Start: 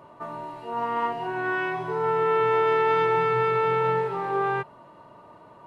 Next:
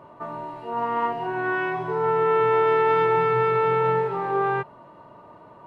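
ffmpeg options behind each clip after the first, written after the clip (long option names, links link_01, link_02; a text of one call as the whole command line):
ffmpeg -i in.wav -af "highshelf=frequency=3400:gain=-8.5,volume=2.5dB" out.wav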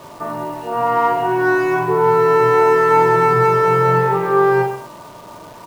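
ffmpeg -i in.wav -filter_complex "[0:a]acrossover=split=110|1700[link_01][link_02][link_03];[link_03]asoftclip=type=tanh:threshold=-39dB[link_04];[link_01][link_02][link_04]amix=inputs=3:normalize=0,aecho=1:1:40|84|132.4|185.6|244.2:0.631|0.398|0.251|0.158|0.1,acrusher=bits=9:dc=4:mix=0:aa=0.000001,volume=7.5dB" out.wav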